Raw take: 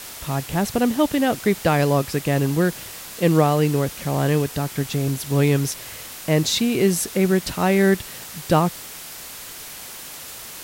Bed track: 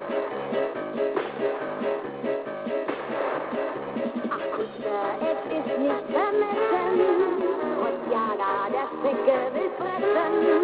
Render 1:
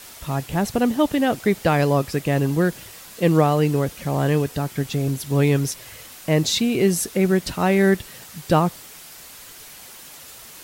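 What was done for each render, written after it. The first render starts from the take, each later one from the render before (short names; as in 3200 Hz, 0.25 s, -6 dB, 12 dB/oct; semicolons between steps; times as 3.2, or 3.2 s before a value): denoiser 6 dB, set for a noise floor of -37 dBFS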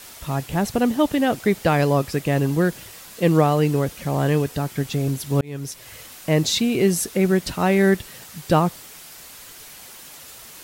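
5.41–5.96 fade in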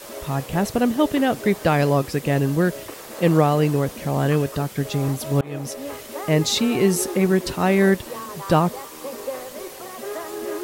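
add bed track -9 dB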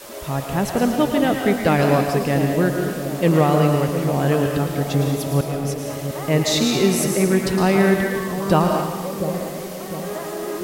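split-band echo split 760 Hz, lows 0.701 s, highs 0.111 s, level -8.5 dB; digital reverb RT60 0.89 s, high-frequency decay 0.95×, pre-delay 0.11 s, DRR 4 dB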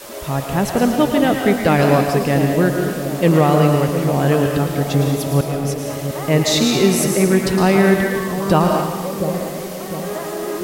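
gain +3 dB; limiter -2 dBFS, peak gain reduction 2 dB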